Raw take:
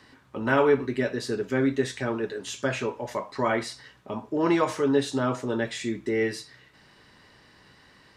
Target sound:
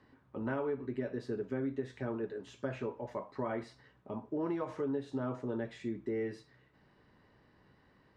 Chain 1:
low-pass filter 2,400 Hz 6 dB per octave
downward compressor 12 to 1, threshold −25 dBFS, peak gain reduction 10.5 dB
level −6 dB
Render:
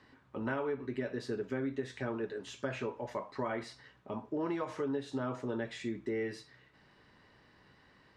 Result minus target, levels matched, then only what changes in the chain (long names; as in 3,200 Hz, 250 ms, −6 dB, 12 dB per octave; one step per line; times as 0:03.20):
2,000 Hz band +4.5 dB
change: low-pass filter 780 Hz 6 dB per octave